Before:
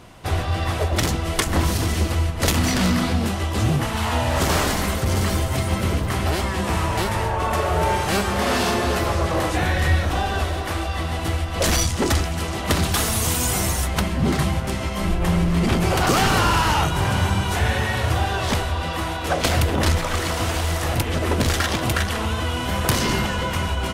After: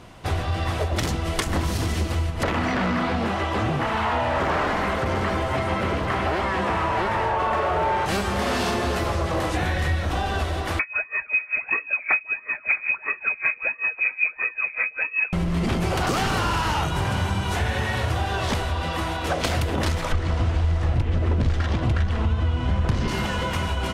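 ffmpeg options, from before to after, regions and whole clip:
-filter_complex "[0:a]asettb=1/sr,asplit=3[s0][s1][s2];[s0]atrim=end=2.434[s3];[s1]atrim=start=2.43:end=8.06,asetpts=PTS-STARTPTS,afade=t=in:d=0.004:c=qsin,afade=t=out:st=5.626:d=0.004:c=qsin,acrossover=split=2600[s4][s5];[s5]acompressor=threshold=0.0126:ratio=4:attack=1:release=60[s6];[s4][s6]amix=inputs=2:normalize=0,asplit=2[s7][s8];[s8]highpass=f=720:p=1,volume=5.62,asoftclip=type=tanh:threshold=0.376[s9];[s7][s9]amix=inputs=2:normalize=0,lowpass=f=2000:p=1,volume=0.501[s10];[s2]atrim=start=8.056[s11];[s3][s10]acrossfade=d=0.004:c1=hsin:c2=qsin[s12];[s12][s11]acrossfade=d=0.004:c1=qsin:c2=hsin,asettb=1/sr,asplit=3[s13][s14][s15];[s13]atrim=end=10.794[s16];[s14]atrim=start=10.79:end=15.33,asetpts=PTS-STARTPTS,afade=t=in:d=0.004:c=qsin,afade=t=out:st=4.536:d=0.004:c=qsin,aphaser=in_gain=1:out_gain=1:delay=1.4:decay=0.71:speed=1.5:type=sinusoidal,lowpass=f=2200:t=q:w=0.5098,lowpass=f=2200:t=q:w=0.6013,lowpass=f=2200:t=q:w=0.9,lowpass=f=2200:t=q:w=2.563,afreqshift=-2600,aeval=exprs='val(0)*pow(10,-25*(0.5-0.5*cos(2*PI*5.2*n/s))/20)':c=same[s17];[s15]atrim=start=15.326[s18];[s16][s17]acrossfade=d=0.004:c1=hsin:c2=qsin[s19];[s19][s18]acrossfade=d=0.004:c1=qsin:c2=hsin,asettb=1/sr,asplit=3[s20][s21][s22];[s20]atrim=end=20.124[s23];[s21]atrim=start=20.12:end=23.08,asetpts=PTS-STARTPTS,afade=t=in:d=0.004:c=qsin,afade=t=out:st=2.956:d=0.004:c=qsin,lowpass=9900,aemphasis=mode=reproduction:type=bsi[s24];[s22]atrim=start=23.076[s25];[s23][s24]acrossfade=d=0.004:c1=hsin:c2=qsin[s26];[s26][s25]acrossfade=d=0.004:c1=qsin:c2=hsin,highshelf=f=9500:g=-8.5,acompressor=threshold=0.0891:ratio=3"

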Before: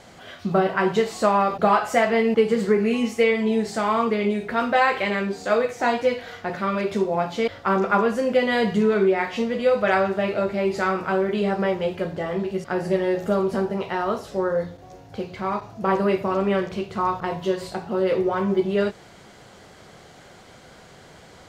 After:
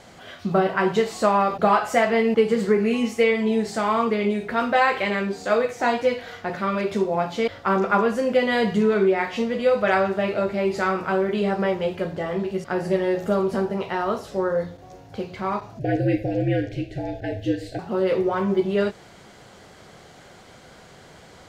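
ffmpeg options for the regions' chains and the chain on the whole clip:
-filter_complex "[0:a]asettb=1/sr,asplit=3[s0][s1][s2];[s0]atrim=end=15.794[s3];[s1]atrim=start=15.79:end=17.79,asetpts=PTS-STARTPTS,afade=t=in:d=0.004:c=qsin,afade=t=out:st=1.996:d=0.004:c=qsin,highshelf=f=3500:g=-7.5,afreqshift=-67,asuperstop=centerf=1100:order=20:qfactor=1.6[s4];[s2]atrim=start=17.786[s5];[s3][s4]acrossfade=d=0.004:c1=hsin:c2=qsin[s6];[s6][s5]acrossfade=d=0.004:c1=qsin:c2=hsin"

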